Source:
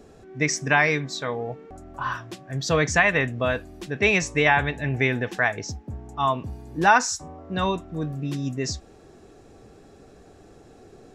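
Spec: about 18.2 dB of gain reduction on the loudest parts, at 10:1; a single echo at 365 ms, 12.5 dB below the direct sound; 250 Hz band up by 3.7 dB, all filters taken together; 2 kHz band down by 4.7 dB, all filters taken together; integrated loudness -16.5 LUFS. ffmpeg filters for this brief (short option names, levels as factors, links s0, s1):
-af "equalizer=f=250:t=o:g=5,equalizer=f=2000:t=o:g=-6,acompressor=threshold=0.0251:ratio=10,aecho=1:1:365:0.237,volume=10.6"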